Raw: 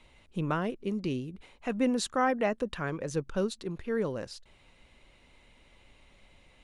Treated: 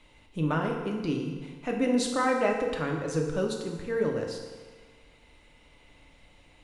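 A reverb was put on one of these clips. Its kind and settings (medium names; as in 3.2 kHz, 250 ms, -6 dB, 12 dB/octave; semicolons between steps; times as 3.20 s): FDN reverb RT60 1.5 s, low-frequency decay 0.9×, high-frequency decay 0.8×, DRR 0.5 dB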